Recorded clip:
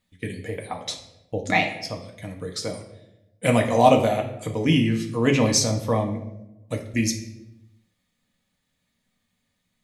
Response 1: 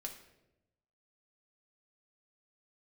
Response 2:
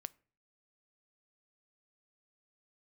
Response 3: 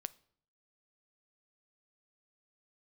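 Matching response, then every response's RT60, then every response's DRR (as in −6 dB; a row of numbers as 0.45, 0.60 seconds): 1; 0.90, 0.45, 0.60 seconds; 1.0, 18.5, 16.5 decibels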